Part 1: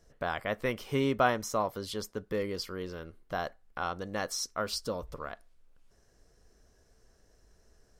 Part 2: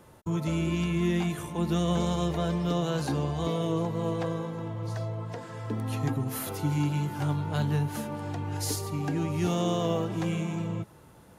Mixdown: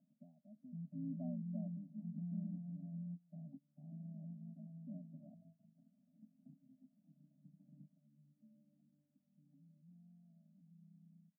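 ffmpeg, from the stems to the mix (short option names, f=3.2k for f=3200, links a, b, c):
-filter_complex "[0:a]equalizer=f=75:t=o:w=0.28:g=14.5,volume=7.5dB,afade=t=in:st=0.9:d=0.37:silence=0.316228,afade=t=out:st=2.39:d=0.75:silence=0.334965,afade=t=in:st=4.74:d=0.3:silence=0.223872,asplit=2[a][b];[1:a]adelay=450,volume=-15dB[c];[b]apad=whole_len=521788[d];[c][d]sidechaingate=range=-28dB:threshold=-58dB:ratio=16:detection=peak[e];[a][e]amix=inputs=2:normalize=0,acompressor=mode=upward:threshold=-47dB:ratio=2.5,asuperpass=centerf=290:order=12:qfactor=0.83,afftfilt=real='re*eq(mod(floor(b*sr/1024/300),2),0)':imag='im*eq(mod(floor(b*sr/1024/300),2),0)':win_size=1024:overlap=0.75"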